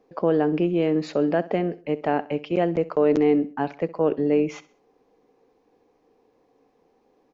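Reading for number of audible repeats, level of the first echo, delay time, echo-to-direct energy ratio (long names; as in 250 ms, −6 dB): 3, −18.5 dB, 65 ms, −18.0 dB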